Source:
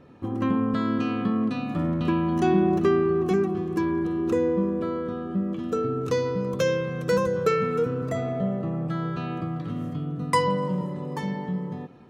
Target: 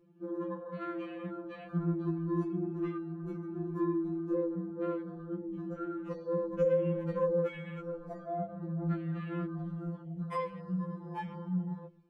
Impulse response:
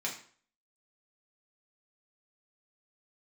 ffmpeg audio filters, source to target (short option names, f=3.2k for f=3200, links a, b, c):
-filter_complex "[0:a]asubboost=boost=5.5:cutoff=52,acompressor=threshold=-28dB:ratio=4,flanger=delay=9.1:depth=7.9:regen=-3:speed=2:shape=sinusoidal,asplit=2[a][b];[1:a]atrim=start_sample=2205,asetrate=42336,aresample=44100,adelay=130[c];[b][c]afir=irnorm=-1:irlink=0,volume=-22dB[d];[a][d]amix=inputs=2:normalize=0,afwtdn=0.00708,asettb=1/sr,asplit=3[e][f][g];[e]atrim=end=5.664[h];[f]atrim=start=5.66:end=7.45,asetpts=PTS-STARTPTS,afade=t=in:d=0.004:c=qsin,afade=t=out:st=1.786:d=0.004:c=qsin,tiltshelf=f=970:g=4.5[i];[g]atrim=start=7.446[j];[h][i]acrossfade=d=0.004:c1=hsin:c2=qsin[k];[k][j]acrossfade=d=0.004:c1=qsin:c2=hsin,afftfilt=real='re*2.83*eq(mod(b,8),0)':imag='im*2.83*eq(mod(b,8),0)':win_size=2048:overlap=0.75"